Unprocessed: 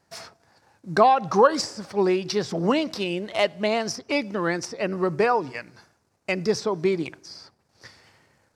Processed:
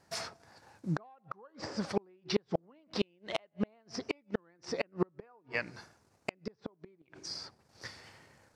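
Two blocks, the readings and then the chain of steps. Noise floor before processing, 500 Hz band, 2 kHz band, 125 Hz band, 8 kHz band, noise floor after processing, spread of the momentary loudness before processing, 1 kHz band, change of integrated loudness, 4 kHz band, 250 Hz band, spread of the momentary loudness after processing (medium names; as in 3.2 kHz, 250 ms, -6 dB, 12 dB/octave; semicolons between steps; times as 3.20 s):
-69 dBFS, -15.5 dB, -12.0 dB, -8.5 dB, -12.5 dB, -71 dBFS, 16 LU, -22.0 dB, -15.5 dB, -10.5 dB, -12.0 dB, 18 LU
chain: low-pass that closes with the level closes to 2.3 kHz, closed at -21 dBFS; inverted gate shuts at -18 dBFS, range -40 dB; trim +1 dB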